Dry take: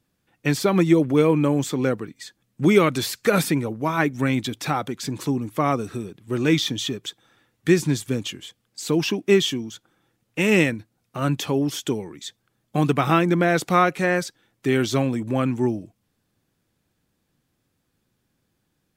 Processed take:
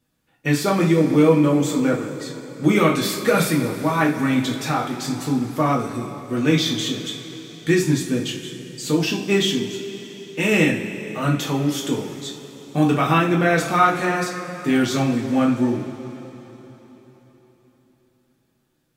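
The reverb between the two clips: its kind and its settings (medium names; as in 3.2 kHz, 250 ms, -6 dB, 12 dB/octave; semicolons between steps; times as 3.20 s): two-slope reverb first 0.33 s, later 4.1 s, from -18 dB, DRR -3 dB; trim -2.5 dB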